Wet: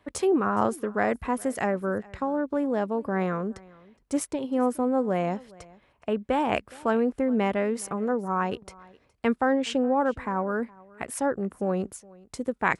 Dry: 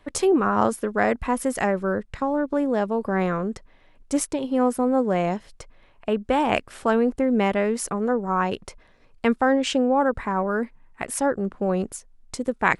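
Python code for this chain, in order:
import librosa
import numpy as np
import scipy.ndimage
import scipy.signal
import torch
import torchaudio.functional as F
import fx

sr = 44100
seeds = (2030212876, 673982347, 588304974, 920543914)

y = scipy.signal.sosfilt(scipy.signal.butter(4, 45.0, 'highpass', fs=sr, output='sos'), x)
y = fx.peak_eq(y, sr, hz=5800.0, db=-3.5, octaves=2.1)
y = y + 10.0 ** (-23.5 / 20.0) * np.pad(y, (int(416 * sr / 1000.0), 0))[:len(y)]
y = y * 10.0 ** (-3.5 / 20.0)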